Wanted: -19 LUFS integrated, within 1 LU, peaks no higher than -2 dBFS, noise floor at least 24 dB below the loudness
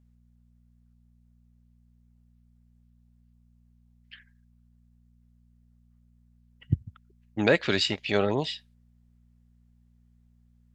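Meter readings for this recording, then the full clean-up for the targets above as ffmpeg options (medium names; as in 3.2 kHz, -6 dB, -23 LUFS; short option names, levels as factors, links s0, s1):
hum 60 Hz; highest harmonic 240 Hz; hum level -58 dBFS; loudness -27.0 LUFS; peak level -6.5 dBFS; loudness target -19.0 LUFS
-> -af "bandreject=f=60:t=h:w=4,bandreject=f=120:t=h:w=4,bandreject=f=180:t=h:w=4,bandreject=f=240:t=h:w=4"
-af "volume=2.51,alimiter=limit=0.794:level=0:latency=1"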